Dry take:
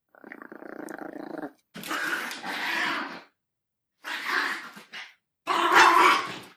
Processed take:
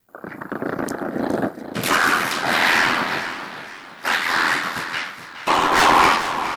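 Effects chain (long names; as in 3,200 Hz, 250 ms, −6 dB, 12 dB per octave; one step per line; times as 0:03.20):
fade-out on the ending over 0.93 s
low-shelf EQ 150 Hz −3 dB
notch filter 3,300 Hz, Q 16
in parallel at −3 dB: downward compressor 20 to 1, threshold −35 dBFS, peak gain reduction 22 dB
on the sum: sine wavefolder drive 4 dB, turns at −8 dBFS
ring modulation 42 Hz
soft clipping −16.5 dBFS, distortion −12 dB
pitch-shifted copies added −12 semitones −13 dB, −4 semitones −6 dB, −3 semitones −6 dB
amplitude tremolo 1.5 Hz, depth 39%
on a send: single-tap delay 416 ms −12 dB
on the sum: feedback echo with a swinging delay time 456 ms, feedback 53%, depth 167 cents, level −15.5 dB
level +6.5 dB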